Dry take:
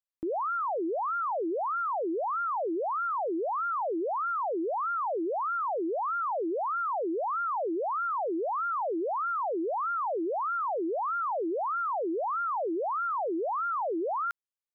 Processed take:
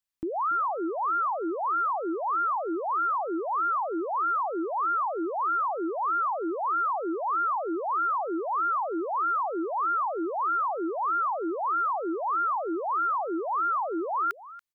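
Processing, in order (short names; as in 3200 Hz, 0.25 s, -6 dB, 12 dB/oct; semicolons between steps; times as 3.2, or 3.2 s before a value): bell 520 Hz -8.5 dB 1.2 oct; echo 0.284 s -17.5 dB; gain +5.5 dB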